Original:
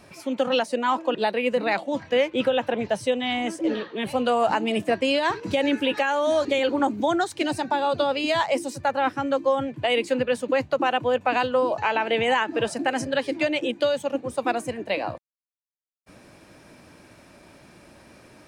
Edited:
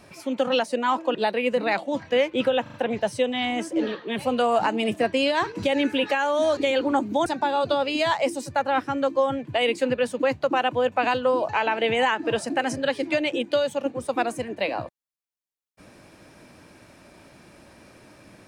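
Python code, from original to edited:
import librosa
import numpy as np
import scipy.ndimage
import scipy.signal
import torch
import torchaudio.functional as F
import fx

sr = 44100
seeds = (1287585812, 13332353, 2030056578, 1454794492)

y = fx.edit(x, sr, fx.stutter(start_s=2.62, slice_s=0.04, count=4),
    fx.cut(start_s=7.14, length_s=0.41), tone=tone)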